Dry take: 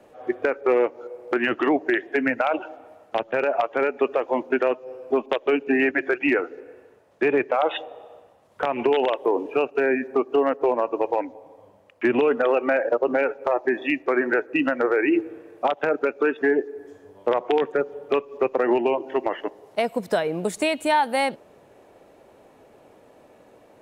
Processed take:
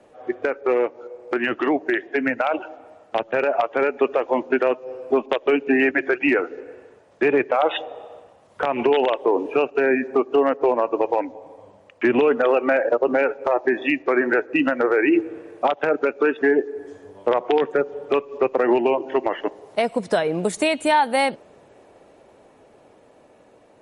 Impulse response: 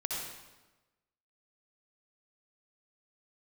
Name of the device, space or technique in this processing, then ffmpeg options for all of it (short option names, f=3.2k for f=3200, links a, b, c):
low-bitrate web radio: -af "dynaudnorm=f=810:g=9:m=5.5dB,alimiter=limit=-9dB:level=0:latency=1:release=246" -ar 48000 -c:a libmp3lame -b:a 48k